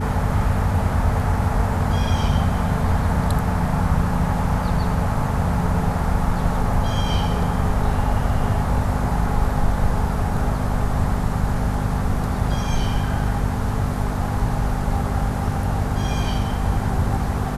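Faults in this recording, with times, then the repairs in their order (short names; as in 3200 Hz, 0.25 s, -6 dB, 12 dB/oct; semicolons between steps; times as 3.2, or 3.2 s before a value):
hum 50 Hz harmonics 5 -25 dBFS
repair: de-hum 50 Hz, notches 5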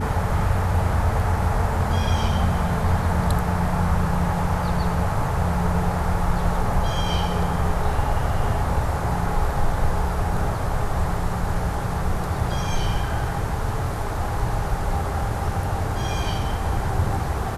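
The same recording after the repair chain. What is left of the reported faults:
none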